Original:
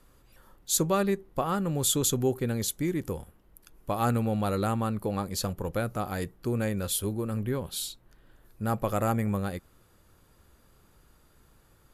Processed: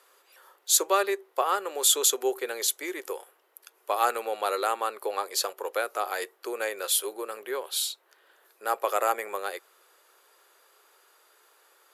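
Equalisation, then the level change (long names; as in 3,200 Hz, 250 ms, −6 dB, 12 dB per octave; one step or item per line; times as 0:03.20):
elliptic high-pass filter 390 Hz, stop band 70 dB
spectral tilt +3 dB per octave
high-shelf EQ 4,900 Hz −11.5 dB
+5.5 dB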